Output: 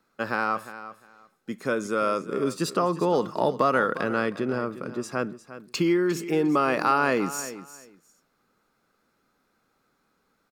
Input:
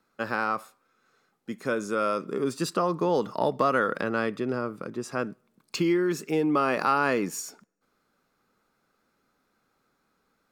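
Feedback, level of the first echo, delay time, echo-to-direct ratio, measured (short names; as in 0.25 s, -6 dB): 19%, -14.0 dB, 0.353 s, -14.0 dB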